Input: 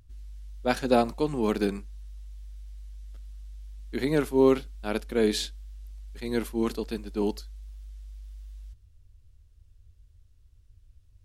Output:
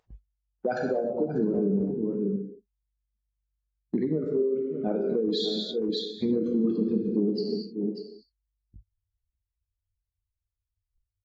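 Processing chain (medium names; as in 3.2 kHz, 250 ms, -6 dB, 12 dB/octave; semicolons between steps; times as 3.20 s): resonances exaggerated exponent 3; gated-style reverb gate 330 ms falling, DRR 1.5 dB; gate -46 dBFS, range -8 dB; on a send: delay 592 ms -18 dB; on the sum: compression 12:1, threshold -35 dBFS, peak gain reduction 22.5 dB; in parallel at -0.5 dB: peak limiter -32.5 dBFS, peak gain reduction 7 dB; on the sum: spectral noise reduction 25 dB; high-pass 120 Hz 6 dB/octave; dynamic bell 190 Hz, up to +7 dB, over -52 dBFS, Q 2.2; trim +6 dB; AAC 24 kbps 48 kHz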